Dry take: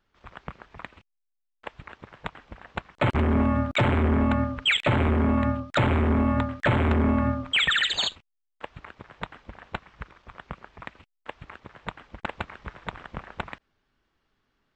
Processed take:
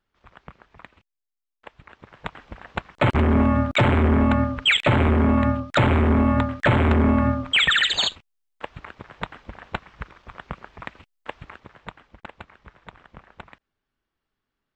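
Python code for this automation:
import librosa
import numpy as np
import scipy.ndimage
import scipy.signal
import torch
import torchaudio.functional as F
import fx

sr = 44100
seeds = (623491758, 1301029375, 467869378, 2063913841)

y = fx.gain(x, sr, db=fx.line((1.8, -5.0), (2.4, 4.0), (11.33, 4.0), (12.33, -8.5)))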